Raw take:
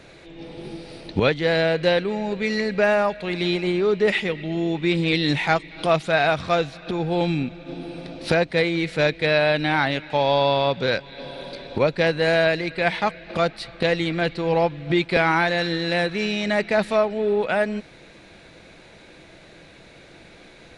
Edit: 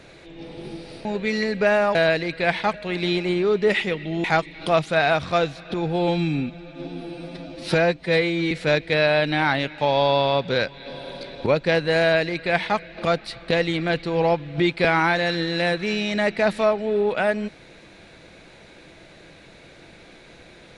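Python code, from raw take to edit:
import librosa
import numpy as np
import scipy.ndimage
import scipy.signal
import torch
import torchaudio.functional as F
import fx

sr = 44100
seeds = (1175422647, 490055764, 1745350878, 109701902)

y = fx.edit(x, sr, fx.cut(start_s=1.05, length_s=1.17),
    fx.cut(start_s=4.62, length_s=0.79),
    fx.stretch_span(start_s=7.13, length_s=1.7, factor=1.5),
    fx.duplicate(start_s=12.33, length_s=0.79, to_s=3.12), tone=tone)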